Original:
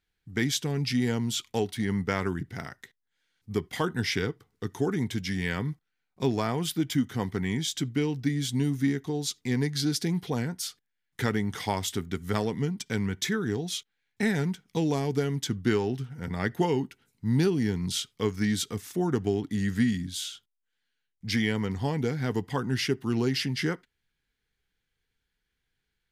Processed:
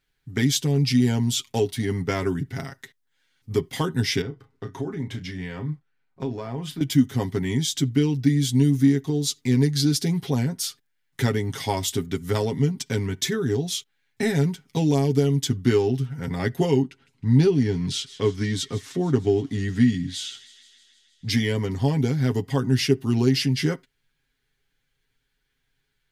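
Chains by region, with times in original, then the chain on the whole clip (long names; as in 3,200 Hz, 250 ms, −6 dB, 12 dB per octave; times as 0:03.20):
0:04.21–0:06.81: low-pass filter 2,000 Hz 6 dB per octave + downward compressor 2.5 to 1, threshold −36 dBFS + double-tracking delay 33 ms −10 dB
0:16.82–0:21.29: high-frequency loss of the air 66 metres + delay with a high-pass on its return 157 ms, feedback 69%, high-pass 1,900 Hz, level −17 dB
whole clip: comb filter 7.4 ms, depth 66%; dynamic equaliser 1,400 Hz, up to −7 dB, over −44 dBFS, Q 0.82; level +4.5 dB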